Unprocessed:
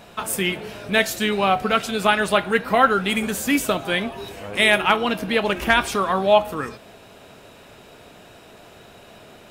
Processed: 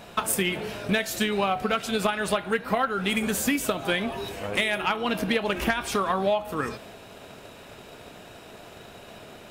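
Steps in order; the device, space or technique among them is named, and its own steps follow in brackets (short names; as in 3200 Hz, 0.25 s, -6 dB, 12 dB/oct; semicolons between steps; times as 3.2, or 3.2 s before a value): drum-bus smash (transient shaper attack +7 dB, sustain +2 dB; compressor 12:1, threshold -20 dBFS, peak gain reduction 14 dB; soft clip -11.5 dBFS, distortion -23 dB)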